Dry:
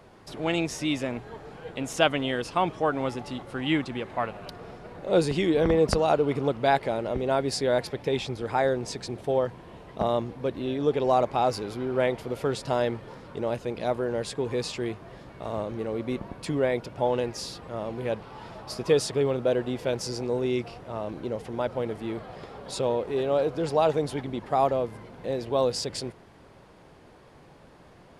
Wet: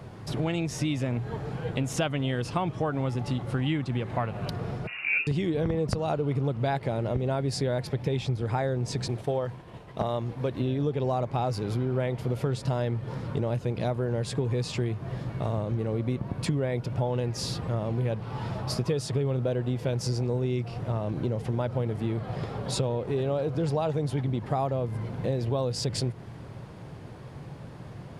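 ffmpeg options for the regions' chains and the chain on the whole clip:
-filter_complex "[0:a]asettb=1/sr,asplit=3[s0][s1][s2];[s0]atrim=end=4.874[s3];[s1]atrim=start=4.87:end=5.27,asetpts=PTS-STARTPTS,afade=t=in:d=0.004:c=qsin,afade=t=out:st=0.396:d=0.004:c=qsin,lowpass=f=2500:t=q:w=0.5098,lowpass=f=2500:t=q:w=0.6013,lowpass=f=2500:t=q:w=0.9,lowpass=f=2500:t=q:w=2.563,afreqshift=-2900,asplit=2[s4][s5];[s5]adelay=14,volume=0.562[s6];[s4][s6]amix=inputs=2:normalize=0,atrim=end_sample=17640[s7];[s2]atrim=start=5.266[s8];[s3][s7]acrossfade=d=0.004:c1=hsin:c2=qsin[s9];[s9][s8]acrossfade=d=0.004:c1=qsin:c2=hsin,asettb=1/sr,asplit=3[s10][s11][s12];[s10]atrim=end=9.084[s13];[s11]atrim=start=9.08:end=10.6,asetpts=PTS-STARTPTS,afade=t=in:d=0.004:c=qsin,afade=t=out:st=1.516:d=0.004:c=qsin,agate=range=0.0224:threshold=0.00794:ratio=3:release=100:detection=peak,equalizer=f=120:w=0.36:g=-8[s14];[s12]atrim=start=10.596[s15];[s13][s14]acrossfade=d=0.004:c1=hsin:c2=qsin[s16];[s16][s15]acrossfade=d=0.004:c1=qsin:c2=hsin,equalizer=f=120:t=o:w=1.3:g=14.5,acompressor=threshold=0.0355:ratio=6,volume=1.58"

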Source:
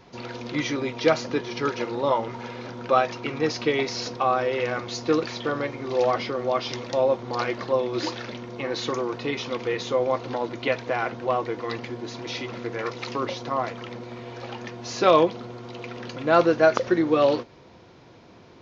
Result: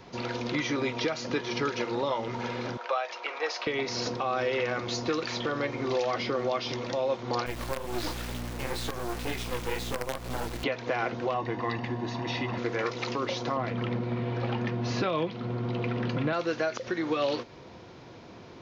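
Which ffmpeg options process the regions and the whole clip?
-filter_complex "[0:a]asettb=1/sr,asplit=3[s0][s1][s2];[s0]atrim=end=2.774[s3];[s1]atrim=start=2.77:end=3.67,asetpts=PTS-STARTPTS,afade=t=in:d=0.004:c=qsin,afade=t=out:st=0.896:d=0.004:c=qsin,highpass=f=590:w=0.5412,highpass=f=590:w=1.3066,highshelf=f=5100:g=-9.5[s4];[s2]atrim=start=3.666[s5];[s3][s4]acrossfade=d=0.004:c1=hsin:c2=qsin[s6];[s6][s5]acrossfade=d=0.004:c1=qsin:c2=hsin,asettb=1/sr,asplit=3[s7][s8][s9];[s7]atrim=end=7.464[s10];[s8]atrim=start=7.46:end=10.64,asetpts=PTS-STARTPTS,afade=t=in:d=0.004:c=qsin,afade=t=out:st=3.176:d=0.004:c=qsin,flanger=delay=16:depth=6.9:speed=2.1,acrusher=bits=4:dc=4:mix=0:aa=0.000001,aeval=exprs='val(0)+0.01*(sin(2*PI*60*n/s)+sin(2*PI*2*60*n/s)/2+sin(2*PI*3*60*n/s)/3+sin(2*PI*4*60*n/s)/4+sin(2*PI*5*60*n/s)/5)':c=same[s11];[s9]atrim=start=10.636[s12];[s10][s11]acrossfade=d=0.004:c1=hsin:c2=qsin[s13];[s13][s12]acrossfade=d=0.004:c1=qsin:c2=hsin,asettb=1/sr,asplit=3[s14][s15][s16];[s14]atrim=end=11.344[s17];[s15]atrim=start=11.34:end=12.58,asetpts=PTS-STARTPTS,afade=t=in:d=0.004:c=qsin,afade=t=out:st=1.236:d=0.004:c=qsin,highpass=56,aemphasis=mode=reproduction:type=75fm,aecho=1:1:1.1:0.54,atrim=end_sample=54684[s18];[s16]atrim=start=12.576[s19];[s17][s18]acrossfade=d=0.004:c1=hsin:c2=qsin[s20];[s20][s19]acrossfade=d=0.004:c1=qsin:c2=hsin,asettb=1/sr,asplit=3[s21][s22][s23];[s21]atrim=end=13.564[s24];[s22]atrim=start=13.56:end=16.33,asetpts=PTS-STARTPTS,afade=t=in:d=0.004:c=qsin,afade=t=out:st=2.766:d=0.004:c=qsin,lowpass=3400,equalizer=f=150:w=0.68:g=12[s25];[s23]atrim=start=16.326[s26];[s24][s25]acrossfade=d=0.004:c1=hsin:c2=qsin[s27];[s27][s26]acrossfade=d=0.004:c1=qsin:c2=hsin,acrossover=split=770|1600[s28][s29][s30];[s28]acompressor=threshold=0.0316:ratio=4[s31];[s29]acompressor=threshold=0.0126:ratio=4[s32];[s30]acompressor=threshold=0.0178:ratio=4[s33];[s31][s32][s33]amix=inputs=3:normalize=0,alimiter=limit=0.0891:level=0:latency=1:release=208,volume=1.33"

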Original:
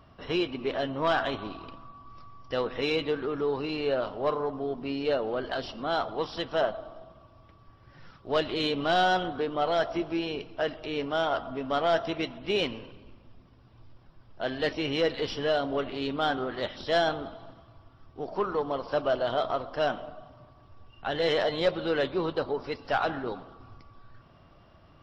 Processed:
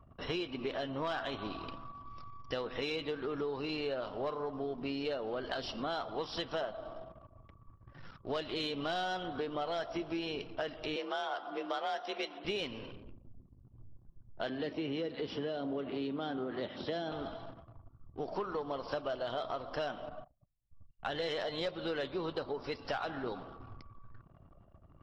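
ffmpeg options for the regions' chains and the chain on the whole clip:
-filter_complex "[0:a]asettb=1/sr,asplit=3[s0][s1][s2];[s0]atrim=end=10.964[s3];[s1]atrim=start=10.96:end=12.45,asetpts=PTS-STARTPTS,afade=t=in:d=0.004:c=qsin,afade=t=out:st=1.486:d=0.004:c=qsin,highpass=320,afreqshift=45[s4];[s2]atrim=start=12.446[s5];[s3][s4]acrossfade=d=0.004:c1=hsin:c2=qsin[s6];[s6][s5]acrossfade=d=0.004:c1=qsin:c2=hsin,asettb=1/sr,asplit=3[s7][s8][s9];[s7]atrim=end=14.494[s10];[s8]atrim=start=14.49:end=17.12,asetpts=PTS-STARTPTS,afade=t=in:d=0.004:c=qsin,afade=t=out:st=2.626:d=0.004:c=qsin,highpass=250,lowpass=5300,aemphasis=mode=reproduction:type=riaa,acrossover=split=410|3000[s11][s12][s13];[s12]acompressor=threshold=0.0126:ratio=2:attack=3.2:release=140:knee=2.83:detection=peak[s14];[s11][s14][s13]amix=inputs=3:normalize=0[s15];[s9]atrim=start=17.116[s16];[s10][s15]acrossfade=d=0.004:c1=hsin:c2=qsin[s17];[s17][s16]acrossfade=d=0.004:c1=qsin:c2=hsin,asettb=1/sr,asplit=3[s18][s19][s20];[s18]atrim=end=20.094[s21];[s19]atrim=start=20.09:end=21.1,asetpts=PTS-STARTPTS,afade=t=in:d=0.004:c=qsin,afade=t=out:st=1.006:d=0.004:c=qsin,agate=range=0.0224:threshold=0.00631:ratio=3:release=100:detection=peak,equalizer=f=370:t=o:w=0.23:g=-12,adynamicsmooth=sensitivity=6:basefreq=5900[s22];[s20]atrim=start=21.096[s23];[s21][s22]acrossfade=d=0.004:c1=hsin:c2=qsin[s24];[s24][s23]acrossfade=d=0.004:c1=qsin:c2=hsin,highshelf=f=3800:g=6,anlmdn=0.00158,acompressor=threshold=0.02:ratio=6"

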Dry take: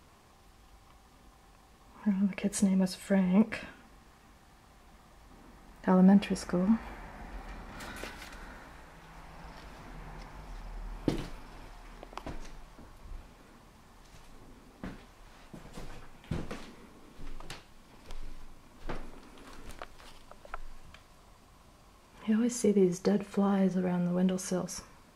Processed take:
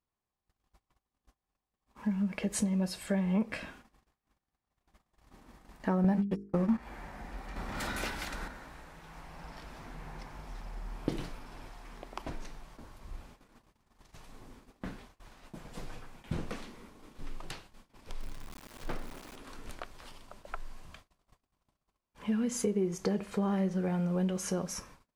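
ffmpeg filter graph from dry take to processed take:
-filter_complex "[0:a]asettb=1/sr,asplit=3[s0][s1][s2];[s0]atrim=end=6.044[s3];[s1]atrim=start=6.04:end=6.78,asetpts=PTS-STARTPTS,afade=t=in:d=0.004:c=qsin,afade=t=out:st=0.736:d=0.004:c=qsin,agate=range=0.00316:threshold=0.0316:ratio=16:release=100:detection=peak,bandreject=f=50:t=h:w=6,bandreject=f=100:t=h:w=6,bandreject=f=150:t=h:w=6,bandreject=f=200:t=h:w=6,bandreject=f=250:t=h:w=6,bandreject=f=300:t=h:w=6,bandreject=f=350:t=h:w=6,bandreject=f=400:t=h:w=6,bandreject=f=450:t=h:w=6,acontrast=71[s4];[s2]atrim=start=6.776[s5];[s3][s4]acrossfade=d=0.004:c1=hsin:c2=qsin[s6];[s6][s5]acrossfade=d=0.004:c1=qsin:c2=hsin,asettb=1/sr,asplit=3[s7][s8][s9];[s7]atrim=end=7.564[s10];[s8]atrim=start=7.56:end=8.48,asetpts=PTS-STARTPTS,afade=t=in:d=0.004:c=qsin,afade=t=out:st=0.916:d=0.004:c=qsin,acontrast=57,asoftclip=type=hard:threshold=0.0335[s11];[s9]atrim=start=8.476[s12];[s10][s11]acrossfade=d=0.004:c1=hsin:c2=qsin[s13];[s13][s12]acrossfade=d=0.004:c1=qsin:c2=hsin,asettb=1/sr,asplit=3[s14][s15][s16];[s14]atrim=end=18.194[s17];[s15]atrim=start=18.19:end=19.36,asetpts=PTS-STARTPTS,afade=t=in:d=0.004:c=qsin,afade=t=out:st=1.166:d=0.004:c=qsin,acompressor=mode=upward:threshold=0.01:ratio=2.5:attack=3.2:release=140:knee=2.83:detection=peak,aeval=exprs='val(0)*gte(abs(val(0)),0.00562)':c=same[s18];[s16]atrim=start=19.356[s19];[s17][s18]acrossfade=d=0.004:c1=hsin:c2=qsin[s20];[s20][s19]acrossfade=d=0.004:c1=qsin:c2=hsin,agate=range=0.0224:threshold=0.00224:ratio=16:detection=peak,acompressor=threshold=0.0355:ratio=3,volume=1.12"

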